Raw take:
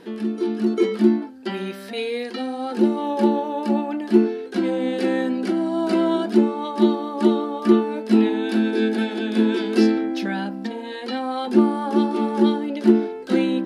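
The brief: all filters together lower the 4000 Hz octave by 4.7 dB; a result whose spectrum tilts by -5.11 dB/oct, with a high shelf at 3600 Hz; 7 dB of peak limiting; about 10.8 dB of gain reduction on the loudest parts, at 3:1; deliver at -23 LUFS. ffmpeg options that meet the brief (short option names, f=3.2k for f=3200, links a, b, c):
-af "highshelf=f=3.6k:g=4,equalizer=f=4k:t=o:g=-8.5,acompressor=threshold=-25dB:ratio=3,volume=6.5dB,alimiter=limit=-14dB:level=0:latency=1"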